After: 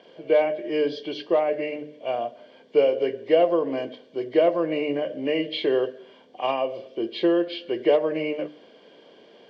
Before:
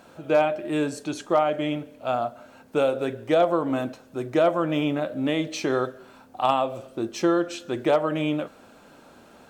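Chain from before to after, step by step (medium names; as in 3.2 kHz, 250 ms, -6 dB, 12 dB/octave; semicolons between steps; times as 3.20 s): knee-point frequency compression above 1.9 kHz 1.5:1; cabinet simulation 200–5000 Hz, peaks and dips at 250 Hz -5 dB, 440 Hz +7 dB, 840 Hz -9 dB, 1.4 kHz -9 dB, 3.2 kHz +9 dB; hum notches 50/100/150/200/250/300 Hz; comb of notches 1.3 kHz; trim +1 dB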